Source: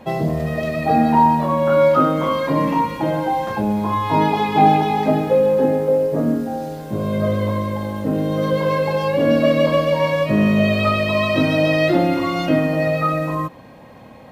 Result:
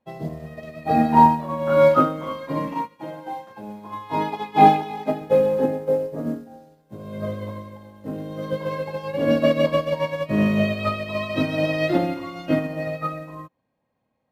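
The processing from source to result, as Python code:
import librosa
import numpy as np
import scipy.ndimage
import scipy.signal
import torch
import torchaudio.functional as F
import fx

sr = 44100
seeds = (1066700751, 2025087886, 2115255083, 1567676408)

y = fx.highpass(x, sr, hz=220.0, slope=6, at=(2.74, 5.22))
y = fx.upward_expand(y, sr, threshold_db=-34.0, expansion=2.5)
y = y * librosa.db_to_amplitude(2.5)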